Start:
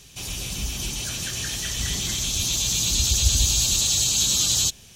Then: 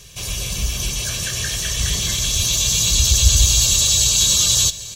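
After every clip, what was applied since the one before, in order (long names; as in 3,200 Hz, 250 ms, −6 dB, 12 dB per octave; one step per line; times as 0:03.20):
comb filter 1.8 ms, depth 55%
in parallel at −8.5 dB: gain into a clipping stage and back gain 13.5 dB
on the sum: single-tap delay 798 ms −16.5 dB
level +1.5 dB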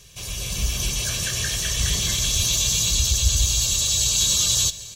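automatic gain control gain up to 5 dB
level −6 dB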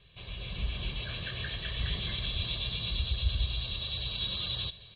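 Butterworth low-pass 4,000 Hz 96 dB per octave
level −8.5 dB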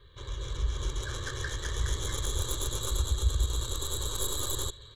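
stylus tracing distortion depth 0.14 ms
in parallel at −2 dB: downward compressor, threshold −39 dBFS, peak gain reduction 15.5 dB
on the sum: phaser with its sweep stopped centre 700 Hz, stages 6
level +3 dB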